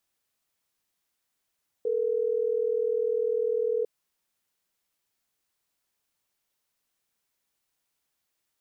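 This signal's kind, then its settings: call progress tone ringback tone, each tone -26.5 dBFS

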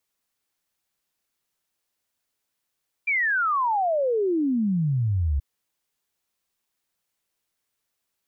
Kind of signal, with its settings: log sweep 2400 Hz -> 66 Hz 2.33 s -20 dBFS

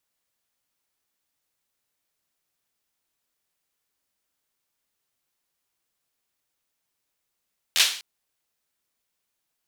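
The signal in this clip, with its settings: hand clap length 0.25 s, apart 12 ms, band 3400 Hz, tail 0.45 s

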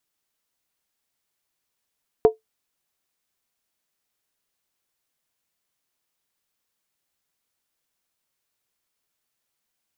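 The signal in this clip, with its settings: skin hit, lowest mode 439 Hz, decay 0.14 s, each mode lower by 10 dB, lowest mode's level -6 dB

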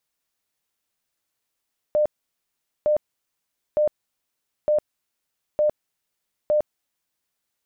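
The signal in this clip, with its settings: tone bursts 602 Hz, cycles 64, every 0.91 s, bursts 6, -16 dBFS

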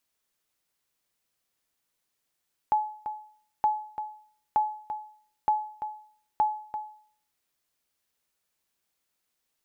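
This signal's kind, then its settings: sonar ping 853 Hz, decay 0.53 s, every 0.92 s, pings 5, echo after 0.34 s, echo -10.5 dB -16.5 dBFS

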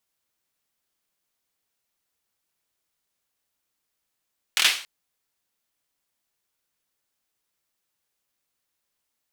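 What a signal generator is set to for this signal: hand clap length 0.28 s, bursts 4, apart 25 ms, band 2700 Hz, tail 0.41 s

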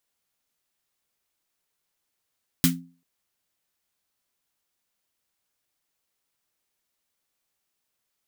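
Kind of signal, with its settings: snare drum length 0.39 s, tones 170 Hz, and 260 Hz, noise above 1300 Hz, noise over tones 0 dB, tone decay 0.39 s, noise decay 0.17 s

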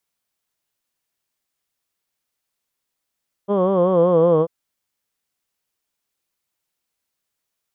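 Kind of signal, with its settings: formant vowel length 0.99 s, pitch 196 Hz, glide -3.5 st, F1 500 Hz, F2 1100 Hz, F3 3200 Hz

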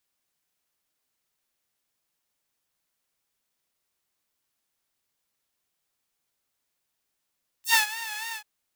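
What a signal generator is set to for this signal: synth patch with vibrato A5, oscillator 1 saw, detune 20 cents, sub -17.5 dB, noise -10 dB, filter highpass, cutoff 1400 Hz, Q 1.1, filter envelope 3.5 oct, filter decay 0.08 s, filter sustain 5%, attack 0.111 s, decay 0.11 s, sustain -16.5 dB, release 0.08 s, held 0.71 s, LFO 3.5 Hz, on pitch 79 cents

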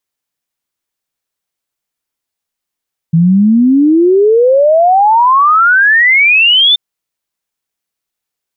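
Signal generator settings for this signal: log sweep 160 Hz -> 3600 Hz 3.63 s -4.5 dBFS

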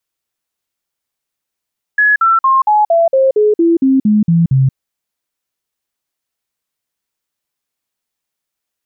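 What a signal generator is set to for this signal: stepped sine 1690 Hz down, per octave 3, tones 12, 0.18 s, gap 0.05 s -7 dBFS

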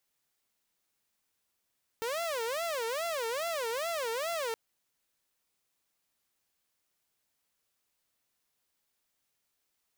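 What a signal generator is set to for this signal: siren wail 450–683 Hz 2.4/s saw -29 dBFS 2.52 s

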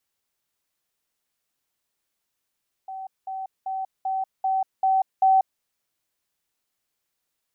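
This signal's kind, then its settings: level ladder 765 Hz -32 dBFS, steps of 3 dB, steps 7, 0.19 s 0.20 s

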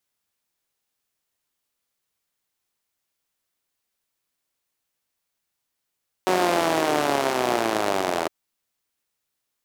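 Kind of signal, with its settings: four-cylinder engine model, changing speed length 2.01 s, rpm 5600, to 2400, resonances 380/630 Hz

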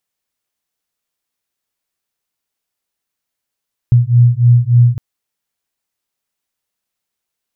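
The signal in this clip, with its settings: beating tones 119 Hz, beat 3.4 Hz, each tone -9.5 dBFS 1.06 s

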